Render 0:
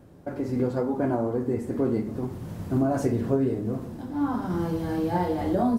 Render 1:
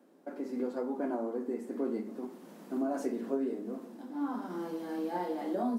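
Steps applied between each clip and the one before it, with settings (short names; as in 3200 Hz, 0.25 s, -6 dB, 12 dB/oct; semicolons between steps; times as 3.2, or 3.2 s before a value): steep high-pass 210 Hz 48 dB/oct; gain -8 dB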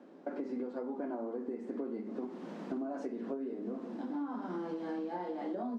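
compressor 12:1, threshold -42 dBFS, peak gain reduction 16 dB; air absorption 140 m; gain +7.5 dB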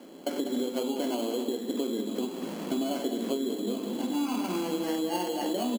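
sample-and-hold 12×; loudspeakers at several distances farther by 68 m -10 dB, 95 m -12 dB; gain +7.5 dB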